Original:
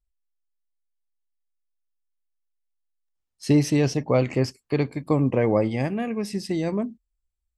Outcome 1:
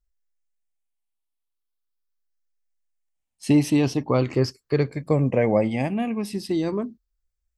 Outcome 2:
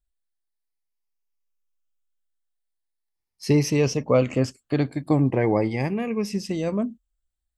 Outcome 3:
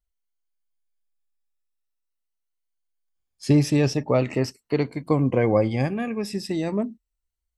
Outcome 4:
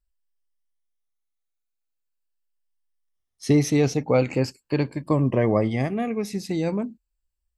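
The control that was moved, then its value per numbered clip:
drifting ripple filter, ripples per octave: 0.56, 0.82, 1.9, 1.3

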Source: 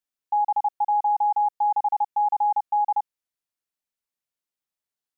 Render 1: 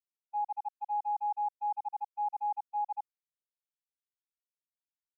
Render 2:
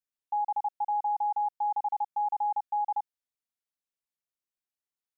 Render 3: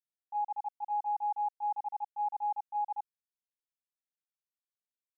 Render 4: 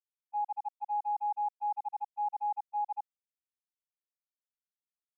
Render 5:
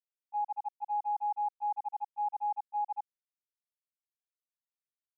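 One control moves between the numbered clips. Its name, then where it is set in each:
gate, range: -60 dB, -7 dB, -19 dB, -44 dB, -32 dB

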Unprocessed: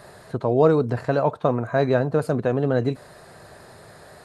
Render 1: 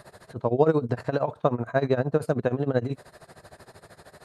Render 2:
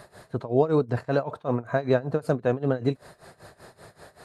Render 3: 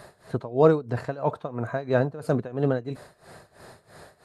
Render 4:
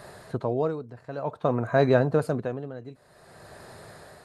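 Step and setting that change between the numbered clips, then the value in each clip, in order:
tremolo, rate: 13 Hz, 5.2 Hz, 3 Hz, 0.53 Hz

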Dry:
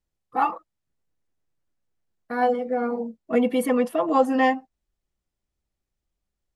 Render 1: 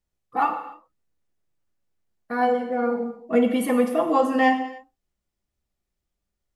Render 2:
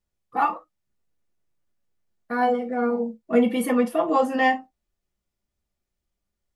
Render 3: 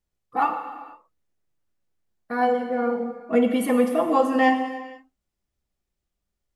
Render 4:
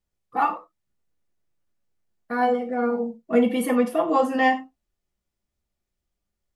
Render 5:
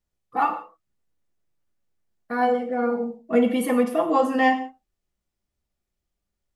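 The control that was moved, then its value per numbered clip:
gated-style reverb, gate: 320 ms, 80 ms, 520 ms, 120 ms, 200 ms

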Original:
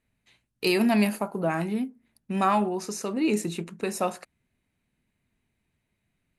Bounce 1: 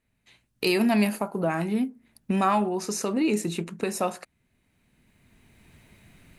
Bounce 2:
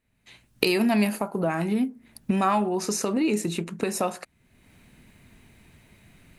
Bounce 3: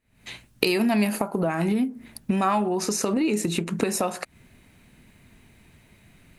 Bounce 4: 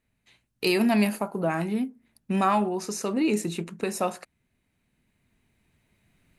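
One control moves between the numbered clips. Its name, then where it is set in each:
recorder AGC, rising by: 13 dB/s, 34 dB/s, 91 dB/s, 5 dB/s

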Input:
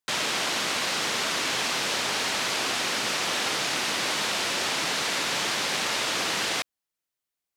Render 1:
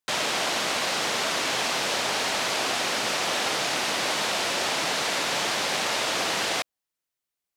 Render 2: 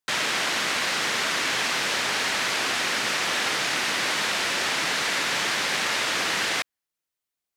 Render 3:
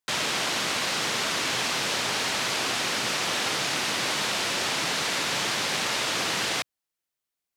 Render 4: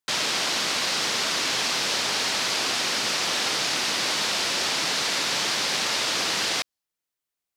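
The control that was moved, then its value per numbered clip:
dynamic bell, frequency: 660 Hz, 1.8 kHz, 120 Hz, 4.9 kHz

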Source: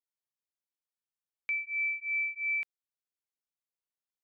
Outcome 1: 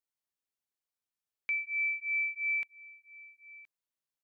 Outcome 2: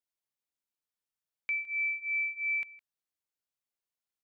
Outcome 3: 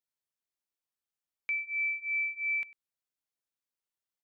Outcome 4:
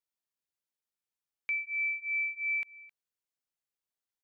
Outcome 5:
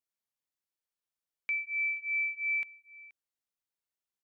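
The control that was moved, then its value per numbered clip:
delay, time: 1021 ms, 161 ms, 99 ms, 264 ms, 478 ms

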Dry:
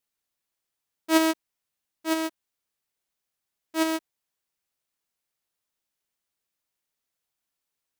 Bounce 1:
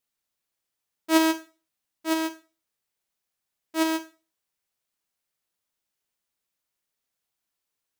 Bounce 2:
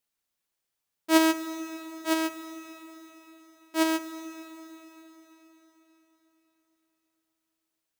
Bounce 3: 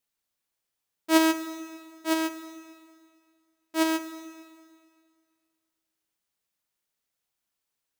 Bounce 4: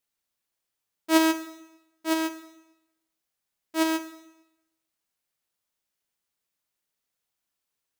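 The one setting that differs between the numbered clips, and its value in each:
Schroeder reverb, RT60: 0.33 s, 4.3 s, 2 s, 0.9 s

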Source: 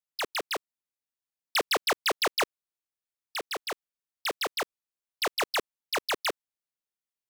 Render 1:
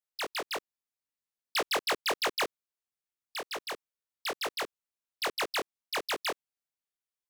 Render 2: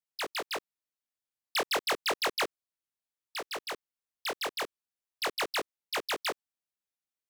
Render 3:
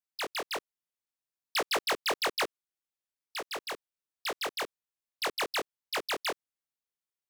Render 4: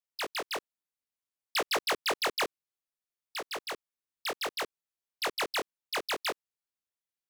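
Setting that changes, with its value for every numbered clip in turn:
chorus, rate: 3.1 Hz, 0.33 Hz, 1.2 Hz, 0.61 Hz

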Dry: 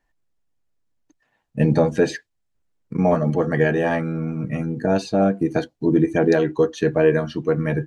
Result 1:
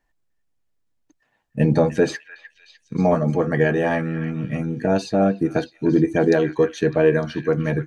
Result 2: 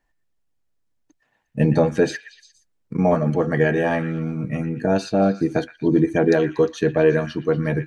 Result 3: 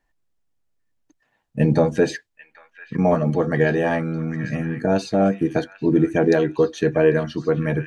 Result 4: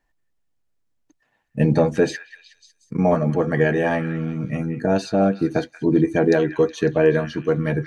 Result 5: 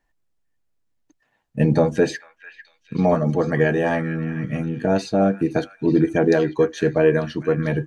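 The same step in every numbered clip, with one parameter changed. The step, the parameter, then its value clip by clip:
repeats whose band climbs or falls, time: 302 ms, 118 ms, 795 ms, 184 ms, 447 ms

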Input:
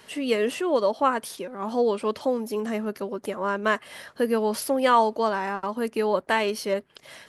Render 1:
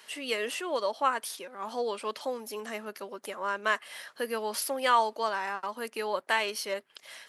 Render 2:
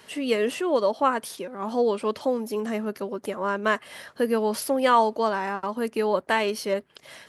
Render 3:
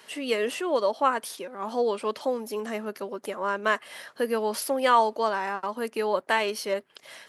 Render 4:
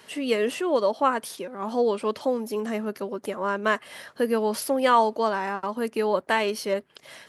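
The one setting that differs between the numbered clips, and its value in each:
high-pass, cutoff frequency: 1.3 kHz, 41 Hz, 430 Hz, 100 Hz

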